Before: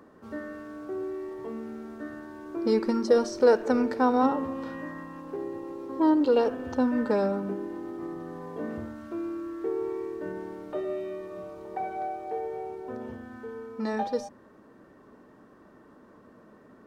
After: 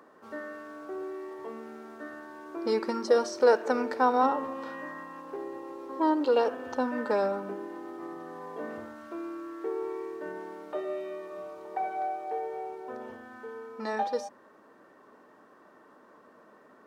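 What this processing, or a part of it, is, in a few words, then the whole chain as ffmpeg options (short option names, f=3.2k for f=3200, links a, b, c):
filter by subtraction: -filter_complex "[0:a]asplit=2[a][b];[b]lowpass=850,volume=-1[c];[a][c]amix=inputs=2:normalize=0"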